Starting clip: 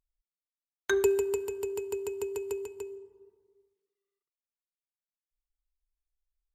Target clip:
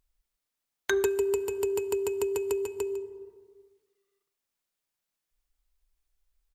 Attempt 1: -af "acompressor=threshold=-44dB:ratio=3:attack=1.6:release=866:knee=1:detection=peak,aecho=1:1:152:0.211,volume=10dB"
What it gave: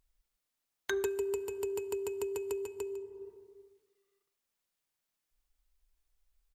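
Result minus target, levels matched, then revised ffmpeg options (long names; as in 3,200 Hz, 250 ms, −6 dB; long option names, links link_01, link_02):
downward compressor: peak gain reduction +7 dB
-af "acompressor=threshold=-33.5dB:ratio=3:attack=1.6:release=866:knee=1:detection=peak,aecho=1:1:152:0.211,volume=10dB"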